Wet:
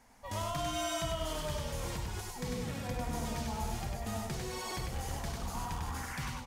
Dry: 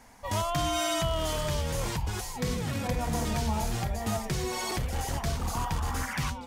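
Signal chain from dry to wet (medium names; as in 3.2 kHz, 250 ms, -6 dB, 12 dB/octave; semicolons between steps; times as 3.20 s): feedback delay 99 ms, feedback 32%, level -3 dB; trim -8.5 dB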